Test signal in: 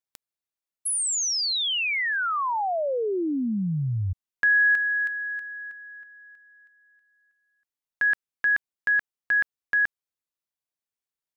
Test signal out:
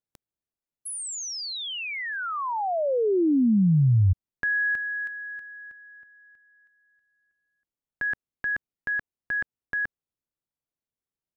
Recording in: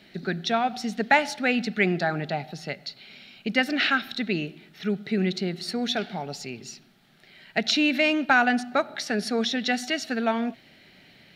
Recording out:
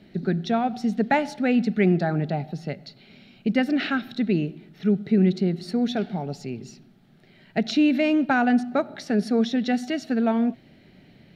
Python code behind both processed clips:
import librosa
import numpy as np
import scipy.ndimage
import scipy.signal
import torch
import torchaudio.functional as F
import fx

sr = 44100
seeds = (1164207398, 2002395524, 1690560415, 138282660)

y = fx.tilt_shelf(x, sr, db=8.0, hz=680.0)